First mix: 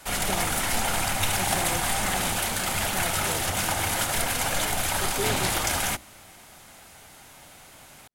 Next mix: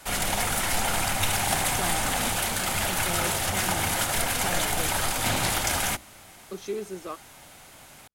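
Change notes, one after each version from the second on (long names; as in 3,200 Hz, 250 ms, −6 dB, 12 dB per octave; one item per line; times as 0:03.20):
speech: entry +1.50 s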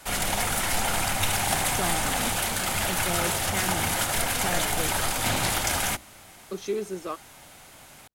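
speech +3.0 dB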